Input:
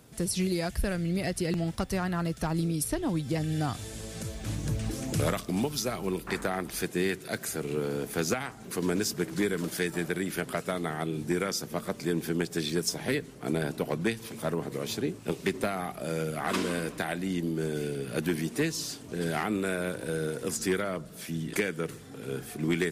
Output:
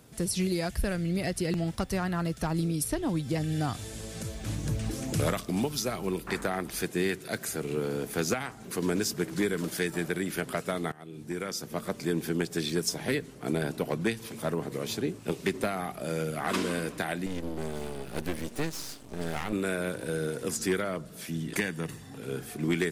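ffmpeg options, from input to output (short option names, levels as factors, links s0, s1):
-filter_complex "[0:a]asettb=1/sr,asplit=3[s0][s1][s2];[s0]atrim=end=17.264[s3];[s1]atrim=start=17.26:end=19.53,asetpts=PTS-STARTPTS,afade=t=in:d=0.004:c=qsin,afade=t=out:st=2.266:d=0.004:c=qsin,aeval=exprs='max(val(0),0)':c=same[s4];[s2]atrim=start=19.526[s5];[s3][s4]acrossfade=d=0.004:c1=hsin:c2=qsin[s6];[s6][s5]acrossfade=d=0.004:c1=qsin:c2=hsin,asettb=1/sr,asplit=3[s7][s8][s9];[s7]atrim=end=21.574[s10];[s8]atrim=start=21.57:end=22.18,asetpts=PTS-STARTPTS,afade=t=in:d=0.004:c=qsin,afade=t=out:st=0.606:d=0.004:c=qsin,aecho=1:1:1.1:0.5,atrim=end_sample=26901[s11];[s9]atrim=start=22.176[s12];[s10][s11]acrossfade=d=0.004:c1=hsin:c2=qsin[s13];[s13][s12]acrossfade=d=0.004:c1=qsin:c2=hsin,asplit=2[s14][s15];[s14]atrim=end=10.92,asetpts=PTS-STARTPTS,afade=t=out:st=10.916:d=0.004:c=hsin:silence=0.0891251[s16];[s15]atrim=start=10.92,asetpts=PTS-STARTPTS,afade=t=in:d=0.95:silence=0.0891251[s17];[s16][s17]concat=n=2:v=0:a=1"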